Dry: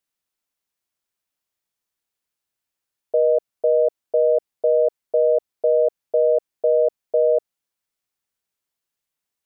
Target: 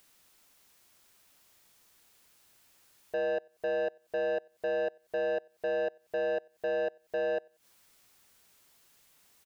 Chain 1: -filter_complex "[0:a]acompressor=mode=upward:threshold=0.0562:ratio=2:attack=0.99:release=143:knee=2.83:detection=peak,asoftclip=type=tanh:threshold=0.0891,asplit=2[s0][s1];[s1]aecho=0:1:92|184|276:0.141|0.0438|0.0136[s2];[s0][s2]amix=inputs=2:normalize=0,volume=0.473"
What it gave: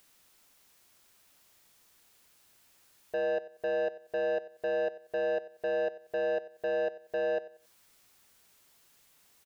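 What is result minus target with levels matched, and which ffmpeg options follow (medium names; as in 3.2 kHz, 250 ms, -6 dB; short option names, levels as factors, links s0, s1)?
echo-to-direct +11.5 dB
-filter_complex "[0:a]acompressor=mode=upward:threshold=0.0562:ratio=2:attack=0.99:release=143:knee=2.83:detection=peak,asoftclip=type=tanh:threshold=0.0891,asplit=2[s0][s1];[s1]aecho=0:1:92|184:0.0376|0.0117[s2];[s0][s2]amix=inputs=2:normalize=0,volume=0.473"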